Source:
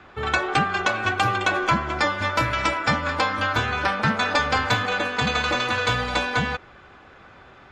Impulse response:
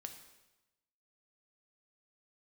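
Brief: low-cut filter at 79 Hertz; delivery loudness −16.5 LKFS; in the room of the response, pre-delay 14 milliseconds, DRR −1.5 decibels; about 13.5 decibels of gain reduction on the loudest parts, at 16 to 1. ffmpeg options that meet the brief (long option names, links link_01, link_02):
-filter_complex "[0:a]highpass=79,acompressor=threshold=-30dB:ratio=16,asplit=2[link_01][link_02];[1:a]atrim=start_sample=2205,adelay=14[link_03];[link_02][link_03]afir=irnorm=-1:irlink=0,volume=6dB[link_04];[link_01][link_04]amix=inputs=2:normalize=0,volume=13dB"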